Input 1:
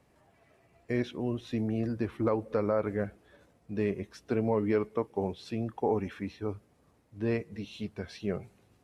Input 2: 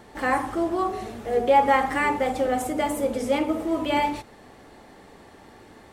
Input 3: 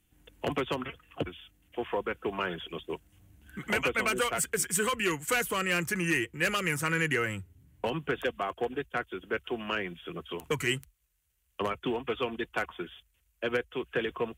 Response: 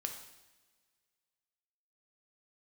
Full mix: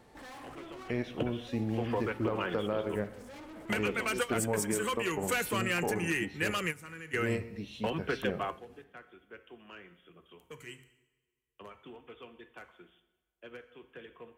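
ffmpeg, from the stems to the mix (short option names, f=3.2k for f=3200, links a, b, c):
-filter_complex "[0:a]aeval=exprs='0.211*(cos(1*acos(clip(val(0)/0.211,-1,1)))-cos(1*PI/2))+0.00841*(cos(7*acos(clip(val(0)/0.211,-1,1)))-cos(7*PI/2))':c=same,volume=0dB,asplit=3[a][b][c];[b]volume=-5dB[d];[1:a]asoftclip=type=hard:threshold=-33.5dB,volume=-11.5dB[e];[2:a]bandreject=f=132.8:t=h:w=4,bandreject=f=265.6:t=h:w=4,bandreject=f=398.4:t=h:w=4,bandreject=f=531.2:t=h:w=4,bandreject=f=664:t=h:w=4,bandreject=f=796.8:t=h:w=4,bandreject=f=929.6:t=h:w=4,bandreject=f=1.0624k:t=h:w=4,bandreject=f=1.1952k:t=h:w=4,bandreject=f=1.328k:t=h:w=4,bandreject=f=1.4608k:t=h:w=4,bandreject=f=1.5936k:t=h:w=4,bandreject=f=1.7264k:t=h:w=4,bandreject=f=1.8592k:t=h:w=4,bandreject=f=1.992k:t=h:w=4,bandreject=f=2.1248k:t=h:w=4,bandreject=f=2.2576k:t=h:w=4,bandreject=f=2.3904k:t=h:w=4,bandreject=f=2.5232k:t=h:w=4,bandreject=f=2.656k:t=h:w=4,bandreject=f=2.7888k:t=h:w=4,bandreject=f=2.9216k:t=h:w=4,bandreject=f=3.0544k:t=h:w=4,volume=-2.5dB,asplit=2[f][g];[g]volume=-20dB[h];[c]apad=whole_len=634005[i];[f][i]sidechaingate=range=-21dB:threshold=-56dB:ratio=16:detection=peak[j];[a][e]amix=inputs=2:normalize=0,acompressor=threshold=-49dB:ratio=1.5,volume=0dB[k];[3:a]atrim=start_sample=2205[l];[d][h]amix=inputs=2:normalize=0[m];[m][l]afir=irnorm=-1:irlink=0[n];[j][k][n]amix=inputs=3:normalize=0,alimiter=limit=-20dB:level=0:latency=1:release=215"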